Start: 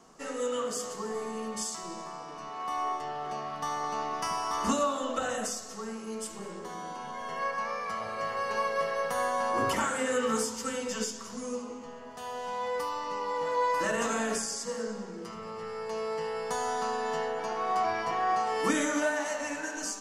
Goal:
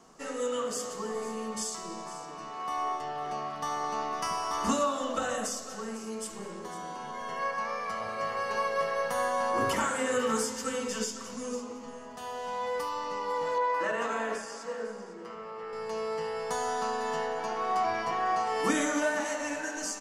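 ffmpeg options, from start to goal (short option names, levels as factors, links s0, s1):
-filter_complex "[0:a]asettb=1/sr,asplit=3[s0][s1][s2];[s0]atrim=end=13.584[s3];[s1]atrim=start=13.58:end=15.73,asetpts=PTS-STARTPTS,afade=t=in:d=0.004:c=qsin,afade=t=out:st=2.146:d=0.004:c=qsin,bass=f=250:g=-12,treble=f=4000:g=-14[s4];[s2]atrim=start=15.726[s5];[s3][s4]acrossfade=d=0.004:c1=hsin:c2=qsin[s6];[s6][s5]acrossfade=d=0.004:c1=qsin:c2=hsin,aecho=1:1:501:0.188"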